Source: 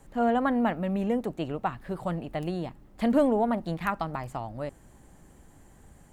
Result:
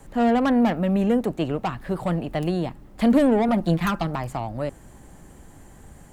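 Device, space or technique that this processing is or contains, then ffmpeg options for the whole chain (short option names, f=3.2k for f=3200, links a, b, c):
one-band saturation: -filter_complex "[0:a]acrossover=split=380|2800[a][b][c];[b]asoftclip=type=tanh:threshold=-29dB[d];[a][d][c]amix=inputs=3:normalize=0,asettb=1/sr,asplit=3[e][f][g];[e]atrim=end=3.484[h];[f]atrim=start=3.48:end=4.07,asetpts=PTS-STARTPTS,afade=t=in:d=0.004:c=qsin,afade=t=out:st=0.586:d=0.004:c=qsin,aecho=1:1:5.7:0.63,atrim=end_sample=26019[i];[g]atrim=start=4.066[j];[h][i]acrossfade=d=0.004:c1=hsin:c2=qsin[k];[k][j]acrossfade=d=0.004:c1=qsin:c2=hsin,volume=7.5dB"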